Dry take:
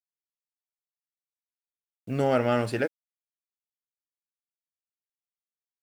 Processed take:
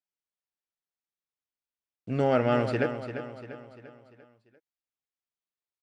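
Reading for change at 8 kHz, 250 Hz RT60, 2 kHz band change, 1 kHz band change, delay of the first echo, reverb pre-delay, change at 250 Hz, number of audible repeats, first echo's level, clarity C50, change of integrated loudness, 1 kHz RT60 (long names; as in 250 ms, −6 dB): can't be measured, no reverb audible, −0.5 dB, 0.0 dB, 345 ms, no reverb audible, +0.5 dB, 4, −10.0 dB, no reverb audible, −1.0 dB, no reverb audible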